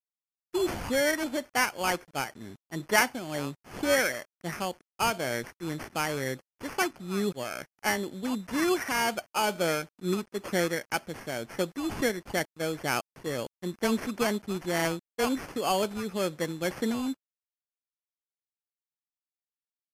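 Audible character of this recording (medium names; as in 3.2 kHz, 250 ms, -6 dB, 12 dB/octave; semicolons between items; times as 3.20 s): aliases and images of a low sample rate 3.8 kHz, jitter 0%; tremolo triangle 2.1 Hz, depth 45%; a quantiser's noise floor 10-bit, dither none; MP3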